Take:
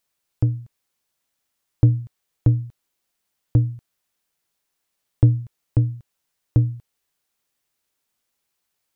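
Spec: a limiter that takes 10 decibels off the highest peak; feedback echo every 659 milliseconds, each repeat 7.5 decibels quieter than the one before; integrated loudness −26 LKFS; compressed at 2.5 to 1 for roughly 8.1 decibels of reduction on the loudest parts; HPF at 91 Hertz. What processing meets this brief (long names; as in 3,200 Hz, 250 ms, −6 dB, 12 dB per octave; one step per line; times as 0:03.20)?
high-pass filter 91 Hz
downward compressor 2.5 to 1, threshold −23 dBFS
brickwall limiter −20.5 dBFS
repeating echo 659 ms, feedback 42%, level −7.5 dB
level +9 dB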